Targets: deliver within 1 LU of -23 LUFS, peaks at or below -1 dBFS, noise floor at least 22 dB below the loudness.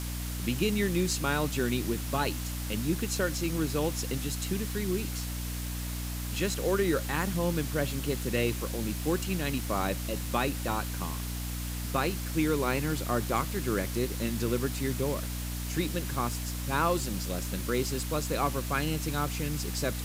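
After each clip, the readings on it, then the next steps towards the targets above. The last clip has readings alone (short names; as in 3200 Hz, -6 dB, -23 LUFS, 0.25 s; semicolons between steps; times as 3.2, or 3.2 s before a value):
hum 60 Hz; harmonics up to 300 Hz; hum level -33 dBFS; noise floor -35 dBFS; noise floor target -53 dBFS; loudness -31.0 LUFS; peak -13.0 dBFS; loudness target -23.0 LUFS
-> notches 60/120/180/240/300 Hz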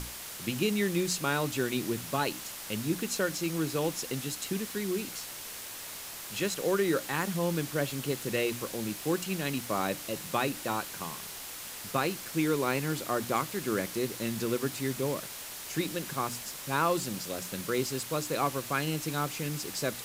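hum none; noise floor -42 dBFS; noise floor target -54 dBFS
-> denoiser 12 dB, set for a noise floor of -42 dBFS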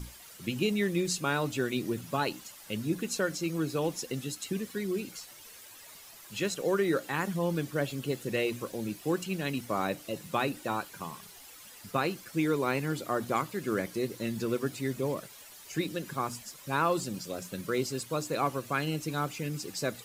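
noise floor -51 dBFS; noise floor target -55 dBFS
-> denoiser 6 dB, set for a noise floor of -51 dBFS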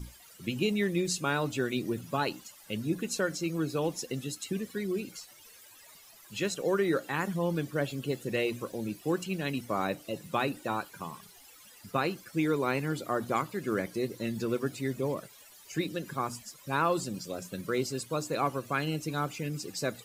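noise floor -55 dBFS; loudness -32.5 LUFS; peak -15.0 dBFS; loudness target -23.0 LUFS
-> gain +9.5 dB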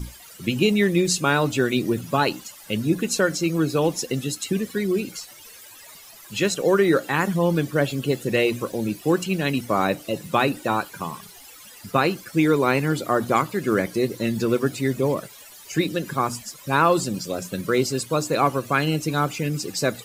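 loudness -23.0 LUFS; peak -5.5 dBFS; noise floor -45 dBFS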